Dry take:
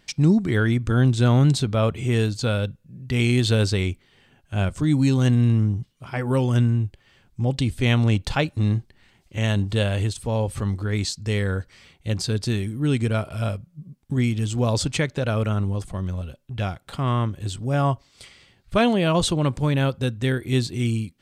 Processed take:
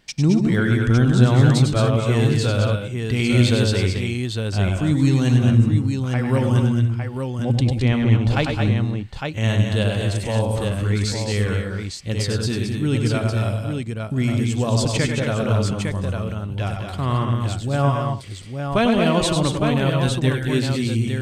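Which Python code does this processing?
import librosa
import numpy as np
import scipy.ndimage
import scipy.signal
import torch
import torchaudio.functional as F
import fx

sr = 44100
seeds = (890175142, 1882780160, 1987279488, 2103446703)

y = fx.lowpass(x, sr, hz=fx.line((7.59, 2100.0), (8.28, 1300.0)), slope=6, at=(7.59, 8.28), fade=0.02)
y = fx.echo_multitap(y, sr, ms=(97, 106, 207, 223, 286, 857), db=(-7.0, -10.0, -12.0, -6.0, -17.0, -5.5))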